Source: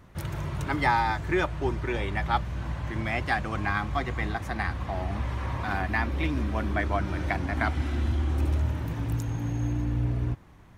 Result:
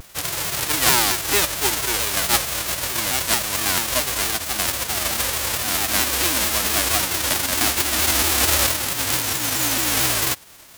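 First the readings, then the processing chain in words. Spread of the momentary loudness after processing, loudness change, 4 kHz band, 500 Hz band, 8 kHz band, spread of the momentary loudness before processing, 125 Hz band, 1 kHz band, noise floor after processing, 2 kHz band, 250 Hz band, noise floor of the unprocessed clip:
5 LU, +10.0 dB, +22.0 dB, +4.5 dB, +33.0 dB, 5 LU, −6.0 dB, +3.5 dB, −36 dBFS, +7.5 dB, +0.5 dB, −50 dBFS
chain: spectral envelope flattened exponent 0.1
pitch modulation by a square or saw wave saw down 4.5 Hz, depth 250 cents
level +6.5 dB

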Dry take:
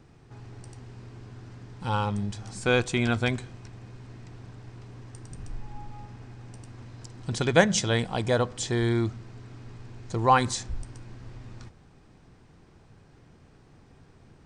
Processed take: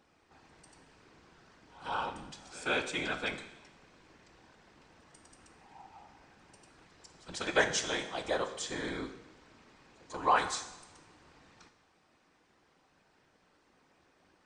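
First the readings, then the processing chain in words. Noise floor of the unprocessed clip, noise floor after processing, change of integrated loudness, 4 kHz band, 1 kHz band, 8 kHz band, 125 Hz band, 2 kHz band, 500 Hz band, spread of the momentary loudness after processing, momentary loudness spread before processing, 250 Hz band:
−56 dBFS, −69 dBFS, −7.5 dB, −5.0 dB, −6.0 dB, −6.0 dB, −22.5 dB, −4.5 dB, −9.0 dB, 19 LU, 23 LU, −13.5 dB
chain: meter weighting curve A
random phases in short frames
on a send: backwards echo 144 ms −20.5 dB
on the sum: coupled-rooms reverb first 0.92 s, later 2.8 s, from −24 dB, DRR 7 dB
level −6.5 dB

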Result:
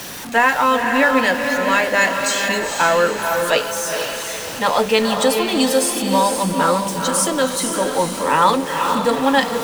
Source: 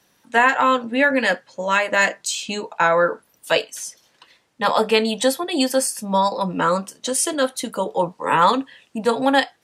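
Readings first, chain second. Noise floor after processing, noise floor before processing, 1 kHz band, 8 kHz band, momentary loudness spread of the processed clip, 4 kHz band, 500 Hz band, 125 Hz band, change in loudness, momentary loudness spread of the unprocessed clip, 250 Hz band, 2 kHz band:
−28 dBFS, −62 dBFS, +2.5 dB, +4.5 dB, 5 LU, +3.5 dB, +3.0 dB, +4.0 dB, +2.5 dB, 9 LU, +3.5 dB, +2.5 dB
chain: converter with a step at zero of −26 dBFS
feedback delay with all-pass diffusion 472 ms, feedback 43%, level −4.5 dB

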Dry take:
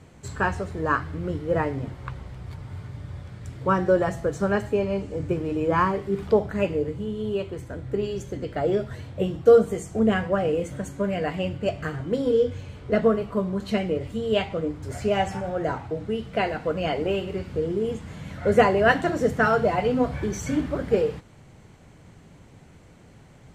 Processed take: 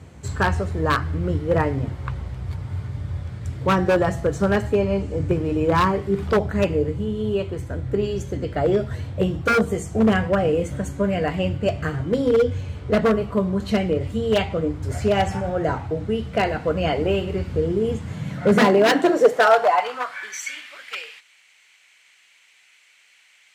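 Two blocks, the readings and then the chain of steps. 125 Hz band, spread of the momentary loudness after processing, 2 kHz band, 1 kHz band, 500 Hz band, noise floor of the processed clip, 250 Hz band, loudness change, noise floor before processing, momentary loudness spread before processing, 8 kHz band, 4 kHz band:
+6.0 dB, 13 LU, +3.0 dB, +4.0 dB, +2.0 dB, −56 dBFS, +4.0 dB, +3.0 dB, −50 dBFS, 14 LU, can't be measured, +5.5 dB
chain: wave folding −15 dBFS
high-pass filter sweep 70 Hz → 2,400 Hz, 0:17.81–0:20.54
level +3.5 dB

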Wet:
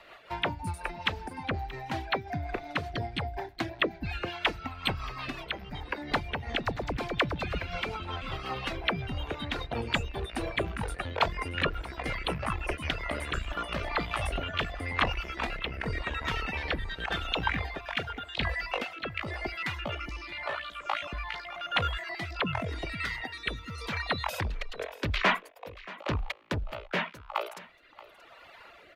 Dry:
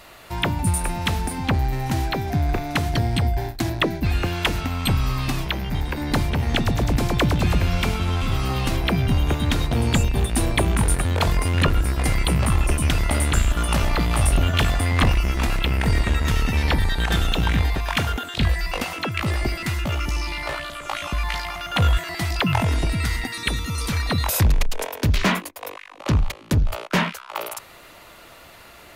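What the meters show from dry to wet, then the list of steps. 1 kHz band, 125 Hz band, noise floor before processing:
−6.0 dB, −16.5 dB, −45 dBFS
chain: reverb reduction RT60 1.3 s
three-way crossover with the lows and the highs turned down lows −13 dB, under 420 Hz, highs −20 dB, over 3,900 Hz
rotating-speaker cabinet horn 5.5 Hz, later 0.9 Hz, at 0:12.99
single-tap delay 629 ms −19 dB

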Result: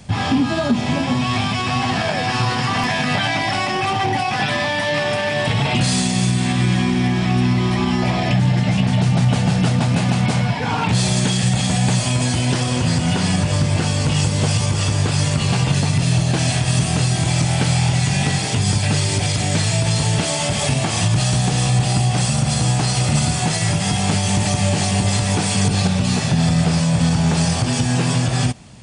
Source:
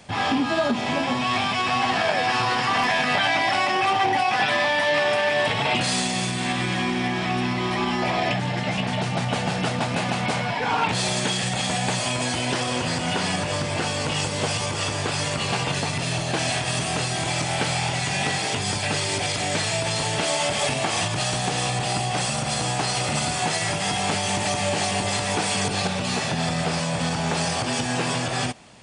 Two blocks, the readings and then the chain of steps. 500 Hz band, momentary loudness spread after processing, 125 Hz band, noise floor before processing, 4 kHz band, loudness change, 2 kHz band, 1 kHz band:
+1.0 dB, 2 LU, +12.5 dB, −27 dBFS, +2.0 dB, +5.0 dB, +0.5 dB, 0.0 dB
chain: bass and treble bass +14 dB, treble +5 dB

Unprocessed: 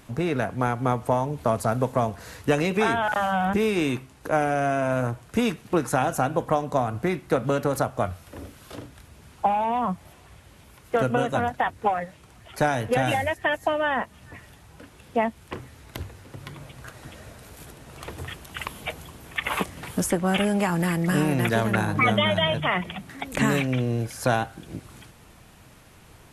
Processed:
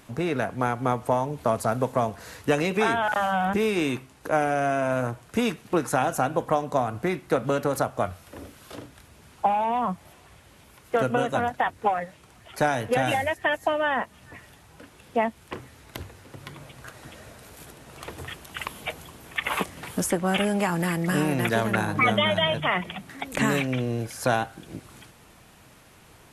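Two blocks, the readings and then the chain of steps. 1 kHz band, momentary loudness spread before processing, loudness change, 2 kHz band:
0.0 dB, 19 LU, −0.5 dB, 0.0 dB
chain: low-shelf EQ 140 Hz −6.5 dB

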